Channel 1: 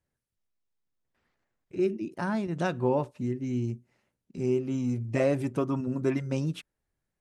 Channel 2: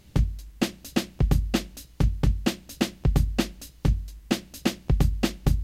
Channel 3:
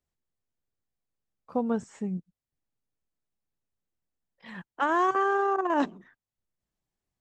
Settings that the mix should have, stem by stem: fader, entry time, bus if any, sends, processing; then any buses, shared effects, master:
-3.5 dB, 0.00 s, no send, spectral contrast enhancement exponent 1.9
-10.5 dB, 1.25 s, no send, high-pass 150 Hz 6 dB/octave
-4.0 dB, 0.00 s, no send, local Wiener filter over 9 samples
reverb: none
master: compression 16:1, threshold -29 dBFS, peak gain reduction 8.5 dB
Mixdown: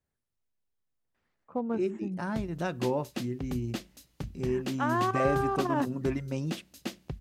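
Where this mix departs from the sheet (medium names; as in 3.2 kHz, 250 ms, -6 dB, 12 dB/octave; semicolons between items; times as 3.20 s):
stem 1: missing spectral contrast enhancement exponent 1.9; stem 2: entry 1.25 s -> 2.20 s; master: missing compression 16:1, threshold -29 dBFS, peak gain reduction 8.5 dB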